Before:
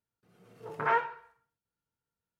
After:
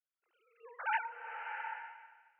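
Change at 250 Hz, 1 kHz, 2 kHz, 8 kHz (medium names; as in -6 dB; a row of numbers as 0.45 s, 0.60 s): under -35 dB, -6.0 dB, -1.5 dB, no reading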